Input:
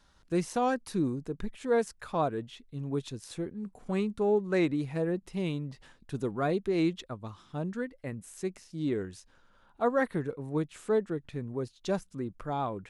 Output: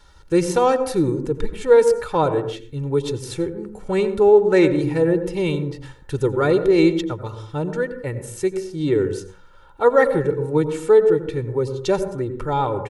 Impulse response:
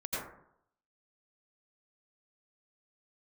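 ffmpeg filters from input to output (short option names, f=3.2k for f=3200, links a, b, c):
-filter_complex "[0:a]aecho=1:1:2.2:0.75,asplit=2[a][b];[1:a]atrim=start_sample=2205,afade=t=out:st=0.36:d=0.01,atrim=end_sample=16317,lowshelf=f=460:g=9.5[c];[b][c]afir=irnorm=-1:irlink=0,volume=-16dB[d];[a][d]amix=inputs=2:normalize=0,volume=8.5dB"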